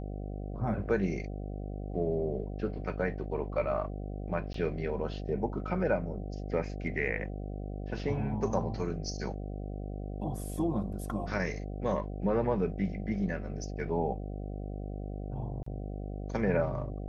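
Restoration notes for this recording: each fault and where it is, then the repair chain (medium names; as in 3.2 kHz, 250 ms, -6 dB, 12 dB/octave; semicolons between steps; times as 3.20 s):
buzz 50 Hz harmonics 15 -38 dBFS
4.53–4.54 s: dropout 13 ms
15.63–15.66 s: dropout 34 ms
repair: de-hum 50 Hz, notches 15; interpolate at 4.53 s, 13 ms; interpolate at 15.63 s, 34 ms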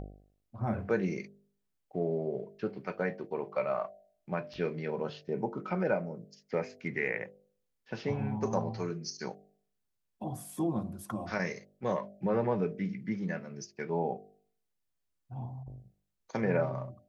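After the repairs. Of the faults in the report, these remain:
nothing left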